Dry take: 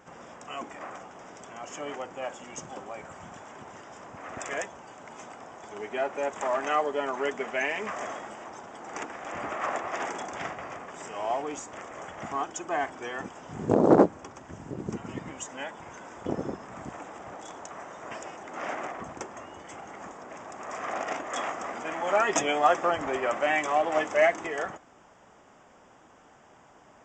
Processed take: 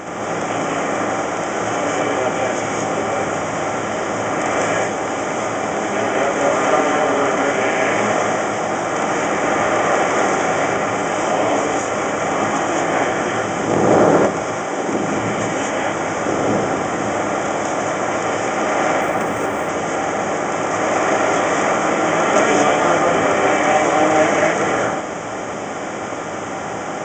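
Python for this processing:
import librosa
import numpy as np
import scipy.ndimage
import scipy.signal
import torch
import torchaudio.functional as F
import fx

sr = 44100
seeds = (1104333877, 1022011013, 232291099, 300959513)

y = fx.bin_compress(x, sr, power=0.4)
y = fx.highpass(y, sr, hz=fx.line((14.42, 500.0), (14.91, 160.0)), slope=12, at=(14.42, 14.91), fade=0.02)
y = fx.rev_gated(y, sr, seeds[0], gate_ms=260, shape='rising', drr_db=-4.0)
y = fx.resample_linear(y, sr, factor=3, at=(19.01, 19.69))
y = y * 10.0 ** (-2.5 / 20.0)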